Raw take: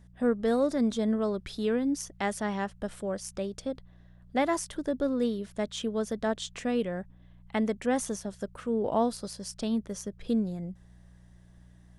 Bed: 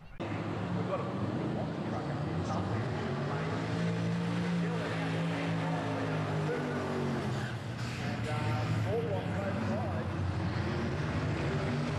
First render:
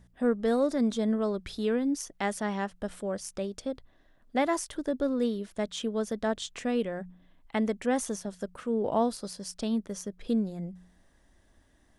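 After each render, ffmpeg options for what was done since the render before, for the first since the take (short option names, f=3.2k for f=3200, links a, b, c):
-af "bandreject=f=60:t=h:w=4,bandreject=f=120:t=h:w=4,bandreject=f=180:t=h:w=4"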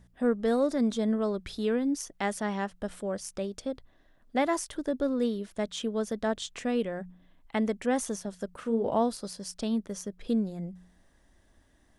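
-filter_complex "[0:a]asettb=1/sr,asplit=3[a][b][c];[a]atrim=end=8.504[d];[b]atrim=start=8.5:end=8.96,asetpts=PTS-STARTPTS,afade=t=in:d=0.004:c=qsin,afade=t=out:st=0.456:d=0.004:c=qsin,asplit=2[e][f];[f]adelay=35,volume=-8dB[g];[e][g]amix=inputs=2:normalize=0,atrim=end_sample=20286[h];[c]atrim=start=8.956[i];[d][h]acrossfade=d=0.004:c1=hsin:c2=qsin[j];[j][i]acrossfade=d=0.004:c1=qsin:c2=hsin"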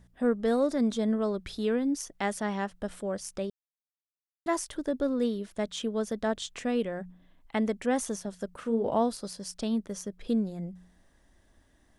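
-filter_complex "[0:a]asplit=3[a][b][c];[a]atrim=end=3.5,asetpts=PTS-STARTPTS,afade=t=out:st=3.496:d=0.004:c=hsin[d];[b]atrim=start=3.5:end=4.46,asetpts=PTS-STARTPTS,volume=0[e];[c]atrim=start=4.46,asetpts=PTS-STARTPTS,afade=t=in:d=0.004:c=hsin[f];[d][e][f]concat=n=3:v=0:a=1"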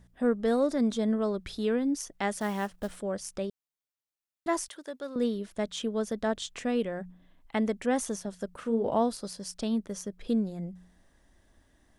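-filter_complex "[0:a]asettb=1/sr,asplit=3[a][b][c];[a]atrim=end=2.384[d];[b]atrim=start=2.38:end=2.97,asetpts=PTS-STARTPTS,afade=t=in:d=0.004:c=qsin,afade=t=out:st=0.586:d=0.004:c=qsin,acrusher=bits=5:mode=log:mix=0:aa=0.000001[e];[c]atrim=start=2.966[f];[d][e]acrossfade=d=0.004:c1=hsin:c2=qsin[g];[g][f]acrossfade=d=0.004:c1=qsin:c2=hsin,asettb=1/sr,asplit=3[h][i][j];[h]atrim=end=4.684[k];[i]atrim=start=4.68:end=5.16,asetpts=PTS-STARTPTS,afade=t=in:d=0.004:c=qsin,afade=t=out:st=0.476:d=0.004:c=qsin,highpass=f=1.3k:p=1[l];[j]atrim=start=5.156[m];[k][l]acrossfade=d=0.004:c1=hsin:c2=qsin[n];[n][m]acrossfade=d=0.004:c1=qsin:c2=hsin"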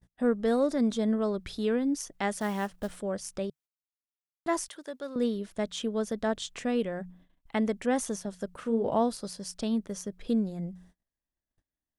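-af "agate=range=-31dB:threshold=-56dB:ratio=16:detection=peak,equalizer=f=150:t=o:w=0.36:g=3.5"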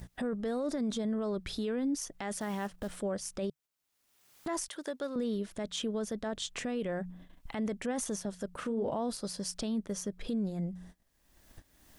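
-af "acompressor=mode=upward:threshold=-31dB:ratio=2.5,alimiter=level_in=2dB:limit=-24dB:level=0:latency=1:release=10,volume=-2dB"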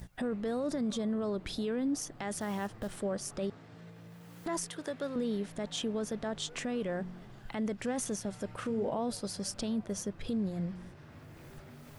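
-filter_complex "[1:a]volume=-19dB[a];[0:a][a]amix=inputs=2:normalize=0"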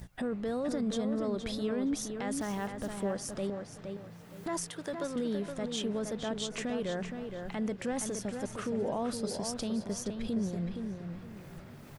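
-filter_complex "[0:a]asplit=2[a][b];[b]adelay=468,lowpass=f=3.9k:p=1,volume=-6dB,asplit=2[c][d];[d]adelay=468,lowpass=f=3.9k:p=1,volume=0.29,asplit=2[e][f];[f]adelay=468,lowpass=f=3.9k:p=1,volume=0.29,asplit=2[g][h];[h]adelay=468,lowpass=f=3.9k:p=1,volume=0.29[i];[a][c][e][g][i]amix=inputs=5:normalize=0"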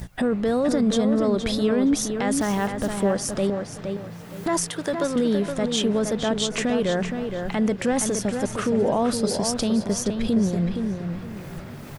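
-af "volume=11.5dB"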